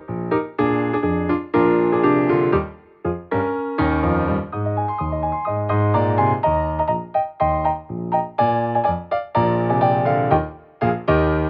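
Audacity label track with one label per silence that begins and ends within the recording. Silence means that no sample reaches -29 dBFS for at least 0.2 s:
2.700000	3.050000	silence
10.530000	10.810000	silence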